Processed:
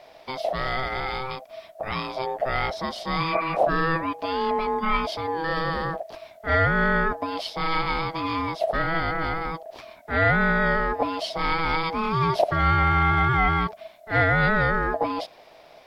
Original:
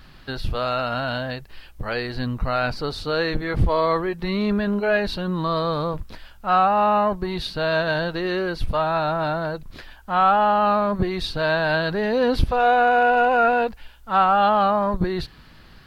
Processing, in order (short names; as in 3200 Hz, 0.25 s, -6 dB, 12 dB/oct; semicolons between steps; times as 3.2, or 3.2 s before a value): ring modulator 650 Hz; spectral repair 3.28–3.53, 1100–2500 Hz before